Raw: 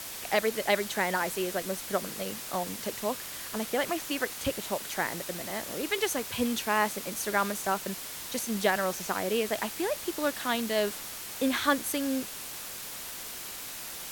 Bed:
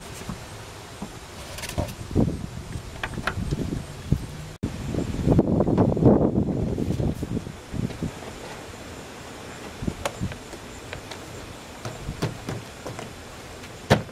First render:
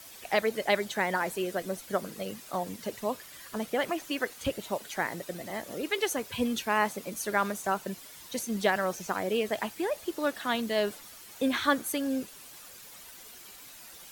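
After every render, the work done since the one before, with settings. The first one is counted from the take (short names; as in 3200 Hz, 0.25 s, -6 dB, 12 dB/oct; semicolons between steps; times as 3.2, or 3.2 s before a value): denoiser 11 dB, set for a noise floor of -40 dBFS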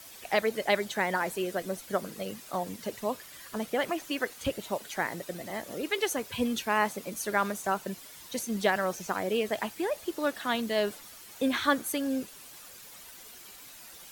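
nothing audible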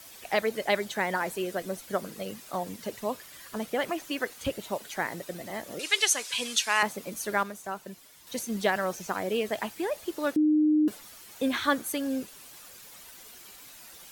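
5.79–6.83 weighting filter ITU-R 468; 7.43–8.27 gain -6.5 dB; 10.36–10.88 bleep 305 Hz -19 dBFS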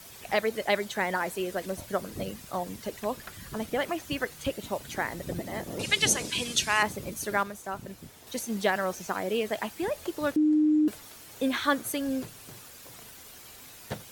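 add bed -18.5 dB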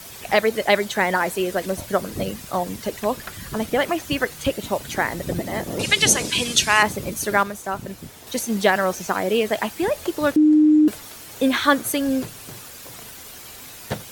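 gain +8.5 dB; limiter -3 dBFS, peak gain reduction 2.5 dB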